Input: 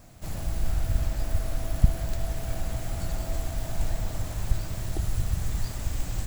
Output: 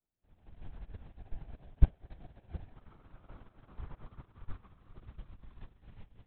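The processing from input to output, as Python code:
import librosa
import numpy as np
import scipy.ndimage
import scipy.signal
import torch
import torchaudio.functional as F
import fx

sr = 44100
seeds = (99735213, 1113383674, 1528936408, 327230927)

y = fx.peak_eq(x, sr, hz=1200.0, db=13.5, octaves=0.44, at=(2.73, 5.0))
y = fx.vibrato(y, sr, rate_hz=0.34, depth_cents=56.0)
y = fx.air_absorb(y, sr, metres=72.0)
y = y + 10.0 ** (-8.0 / 20.0) * np.pad(y, (int(723 * sr / 1000.0), 0))[:len(y)]
y = fx.lpc_vocoder(y, sr, seeds[0], excitation='whisper', order=10)
y = fx.upward_expand(y, sr, threshold_db=-37.0, expansion=2.5)
y = F.gain(torch.from_numpy(y), -4.0).numpy()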